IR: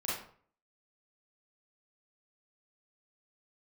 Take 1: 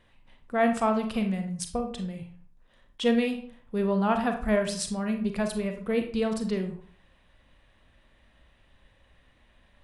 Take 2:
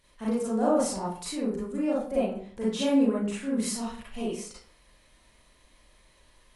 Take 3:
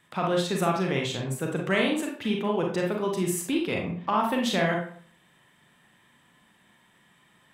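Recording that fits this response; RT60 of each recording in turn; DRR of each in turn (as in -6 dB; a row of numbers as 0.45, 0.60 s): 2; 0.50, 0.50, 0.50 s; 5.0, -8.5, -0.5 dB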